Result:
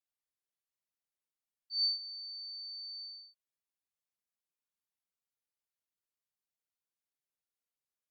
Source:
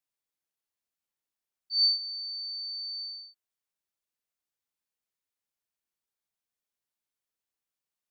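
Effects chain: gain -7.5 dB; Opus 64 kbps 48000 Hz

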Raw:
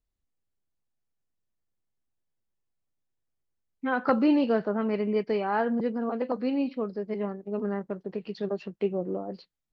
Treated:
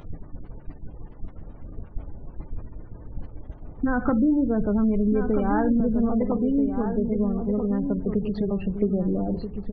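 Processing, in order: G.711 law mismatch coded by mu; tone controls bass +15 dB, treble -11 dB; added noise brown -36 dBFS; FDN reverb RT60 0.63 s, low-frequency decay 0.9×, high-frequency decay 0.85×, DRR 11.5 dB; expander -28 dBFS; compressor 4:1, threshold -32 dBFS, peak gain reduction 18.5 dB; 3.88–6.18 low shelf 110 Hz +8.5 dB; spectral gate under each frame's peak -30 dB strong; outdoor echo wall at 220 m, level -7 dB; upward compressor, threshold -40 dBFS; gain +8.5 dB

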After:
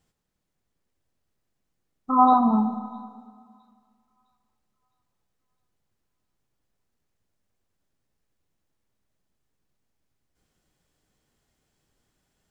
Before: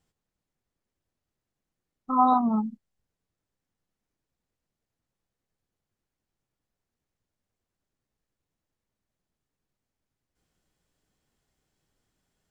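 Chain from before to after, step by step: thin delay 0.659 s, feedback 42%, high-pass 3100 Hz, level -18.5 dB; Schroeder reverb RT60 2 s, DRR 9.5 dB; gain +3.5 dB

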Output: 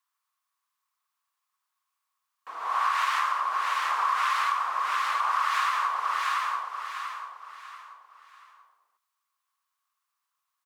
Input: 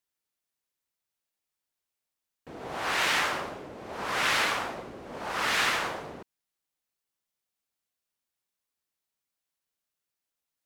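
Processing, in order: resonant high-pass 1100 Hz, resonance Q 10; feedback echo 0.686 s, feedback 35%, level -10 dB; compressor 10:1, threshold -24 dBFS, peak gain reduction 12 dB; gain +1.5 dB

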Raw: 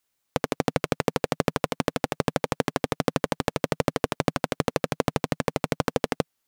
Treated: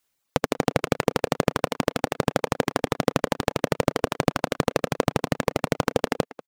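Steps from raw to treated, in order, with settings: reverb removal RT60 2 s; speakerphone echo 0.19 s, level -15 dB; gain +3 dB

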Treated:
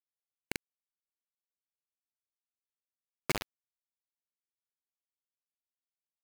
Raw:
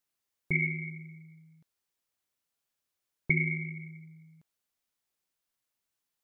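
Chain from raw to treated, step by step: band-pass 470 Hz, Q 2.6; bit-crush 6-bit; gain +10.5 dB

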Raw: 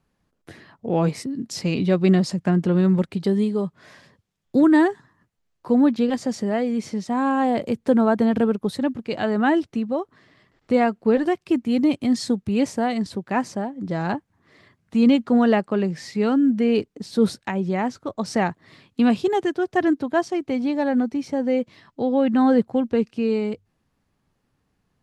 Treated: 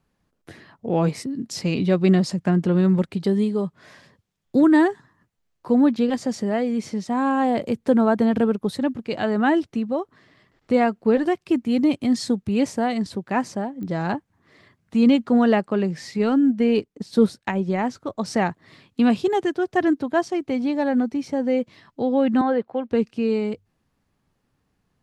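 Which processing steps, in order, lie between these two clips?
16.18–17.86 transient shaper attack +3 dB, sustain -6 dB; 22.41–22.91 three-band isolator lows -15 dB, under 340 Hz, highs -21 dB, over 3700 Hz; pops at 13.83, -24 dBFS

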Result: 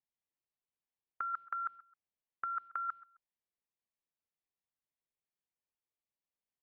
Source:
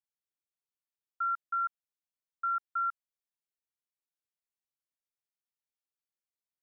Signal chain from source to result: gate with hold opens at -34 dBFS; bell 1400 Hz -13 dB 0.21 oct; negative-ratio compressor -47 dBFS, ratio -0.5; air absorption 420 m; feedback echo 0.132 s, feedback 29%, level -20.5 dB; gain +15.5 dB

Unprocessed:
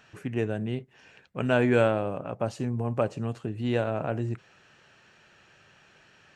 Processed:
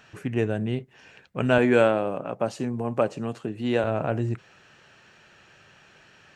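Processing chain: 1.58–3.84 HPF 170 Hz 12 dB/oct; gain +3.5 dB

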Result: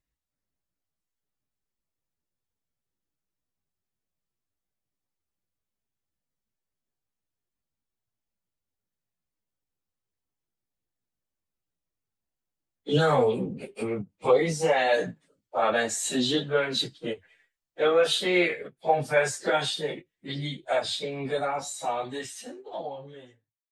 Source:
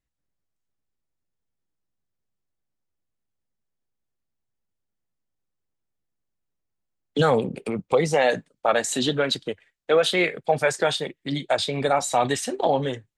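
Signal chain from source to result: ending faded out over 2.09 s; plain phase-vocoder stretch 1.8×; ending taper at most 420 dB/s

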